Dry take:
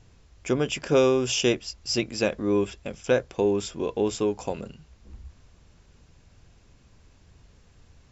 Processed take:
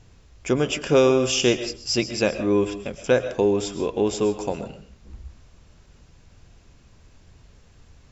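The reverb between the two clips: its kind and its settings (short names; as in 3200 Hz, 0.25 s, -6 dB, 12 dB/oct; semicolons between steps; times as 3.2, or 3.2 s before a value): digital reverb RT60 0.4 s, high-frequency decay 0.65×, pre-delay 85 ms, DRR 10.5 dB; gain +3 dB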